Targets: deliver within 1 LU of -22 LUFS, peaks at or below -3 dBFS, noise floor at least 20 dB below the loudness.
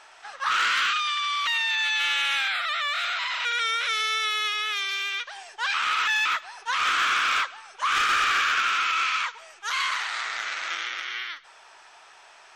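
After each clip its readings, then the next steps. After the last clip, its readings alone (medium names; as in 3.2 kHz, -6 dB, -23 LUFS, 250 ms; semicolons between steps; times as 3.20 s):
clipped samples 0.2%; clipping level -16.5 dBFS; loudness -24.0 LUFS; peak level -16.5 dBFS; loudness target -22.0 LUFS
-> clip repair -16.5 dBFS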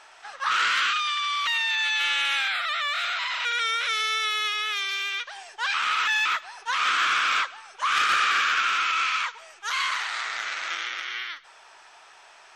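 clipped samples 0.0%; loudness -24.0 LUFS; peak level -9.5 dBFS; loudness target -22.0 LUFS
-> trim +2 dB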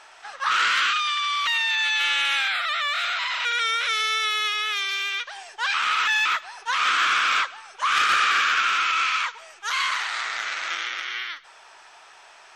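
loudness -22.0 LUFS; peak level -7.5 dBFS; noise floor -49 dBFS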